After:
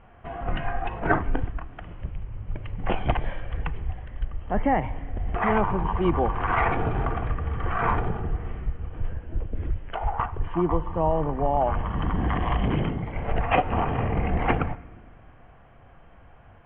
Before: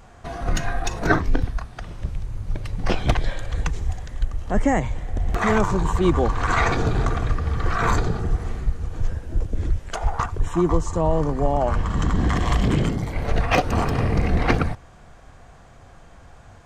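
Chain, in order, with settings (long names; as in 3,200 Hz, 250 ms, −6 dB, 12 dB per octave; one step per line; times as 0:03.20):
on a send at −17.5 dB: convolution reverb RT60 1.6 s, pre-delay 5 ms
on the sum: dynamic equaliser 830 Hz, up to +6 dB, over −39 dBFS, Q 2.4
Chebyshev low-pass filter 3,100 Hz, order 6
level −4 dB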